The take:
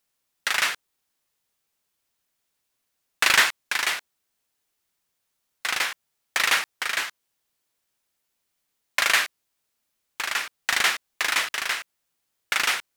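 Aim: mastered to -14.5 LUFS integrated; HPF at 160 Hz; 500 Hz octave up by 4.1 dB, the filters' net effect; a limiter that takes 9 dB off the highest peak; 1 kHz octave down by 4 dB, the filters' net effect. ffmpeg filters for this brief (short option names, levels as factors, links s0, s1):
-af "highpass=160,equalizer=f=500:t=o:g=8,equalizer=f=1000:t=o:g=-7.5,volume=4.47,alimiter=limit=1:level=0:latency=1"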